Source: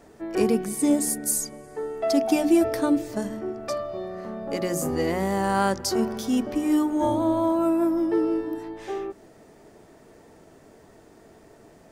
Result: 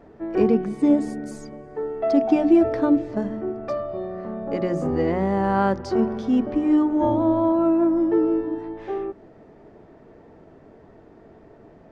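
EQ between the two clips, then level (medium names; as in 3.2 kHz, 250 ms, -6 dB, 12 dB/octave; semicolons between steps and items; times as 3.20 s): tape spacing loss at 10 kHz 34 dB; +4.5 dB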